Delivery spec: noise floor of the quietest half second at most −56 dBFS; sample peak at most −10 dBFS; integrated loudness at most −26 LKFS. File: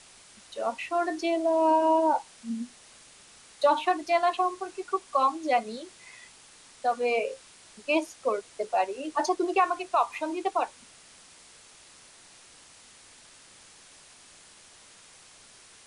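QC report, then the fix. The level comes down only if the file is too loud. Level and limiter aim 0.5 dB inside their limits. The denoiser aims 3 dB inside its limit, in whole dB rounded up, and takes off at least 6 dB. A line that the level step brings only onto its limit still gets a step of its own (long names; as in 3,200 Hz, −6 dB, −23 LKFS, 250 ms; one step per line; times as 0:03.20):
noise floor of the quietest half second −54 dBFS: out of spec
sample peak −11.5 dBFS: in spec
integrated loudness −27.5 LKFS: in spec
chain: broadband denoise 6 dB, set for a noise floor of −54 dBFS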